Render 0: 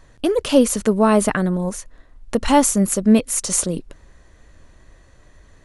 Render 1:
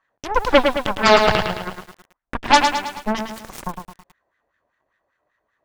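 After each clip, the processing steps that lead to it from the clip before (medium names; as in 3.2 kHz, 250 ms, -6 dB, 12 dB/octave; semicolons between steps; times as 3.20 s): LFO band-pass sine 5.1 Hz 640–1800 Hz; Chebyshev shaper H 3 -38 dB, 7 -19 dB, 8 -10 dB, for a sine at -9.5 dBFS; bit-crushed delay 108 ms, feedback 55%, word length 8-bit, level -5.5 dB; trim +7 dB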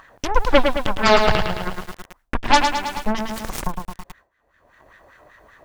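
gate with hold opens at -45 dBFS; bass shelf 76 Hz +11 dB; upward compressor, threshold -14 dBFS; trim -2 dB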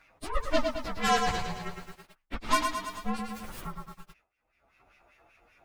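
frequency axis rescaled in octaves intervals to 115%; trim -8 dB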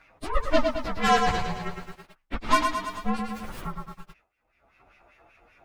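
treble shelf 4.5 kHz -8 dB; trim +5 dB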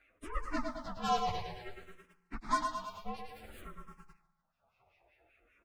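feedback delay 148 ms, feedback 49%, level -20.5 dB; barber-pole phaser -0.56 Hz; trim -9 dB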